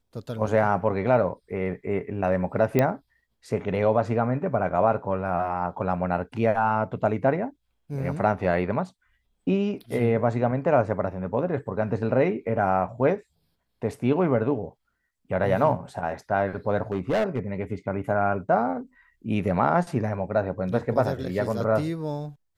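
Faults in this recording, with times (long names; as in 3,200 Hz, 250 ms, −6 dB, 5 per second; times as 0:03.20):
0:02.79: click −9 dBFS
0:16.92–0:17.39: clipping −19.5 dBFS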